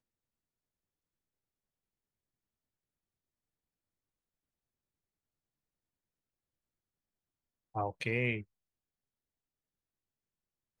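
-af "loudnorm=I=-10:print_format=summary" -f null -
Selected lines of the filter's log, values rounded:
Input Integrated:    -35.2 LUFS
Input True Peak:     -18.4 dBTP
Input LRA:             0.9 LU
Input Threshold:     -45.9 LUFS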